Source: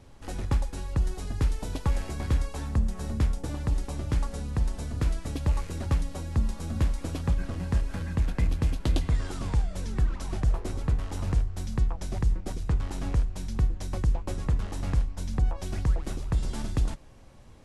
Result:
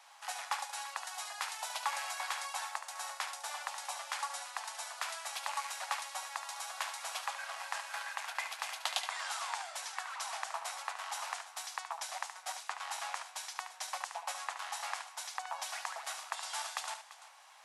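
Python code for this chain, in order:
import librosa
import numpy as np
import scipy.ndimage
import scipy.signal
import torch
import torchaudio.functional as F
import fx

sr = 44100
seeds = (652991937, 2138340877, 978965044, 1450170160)

y = scipy.signal.sosfilt(scipy.signal.butter(8, 730.0, 'highpass', fs=sr, output='sos'), x)
y = fx.echo_multitap(y, sr, ms=(72, 340), db=(-9.5, -16.0))
y = F.gain(torch.from_numpy(y), 4.5).numpy()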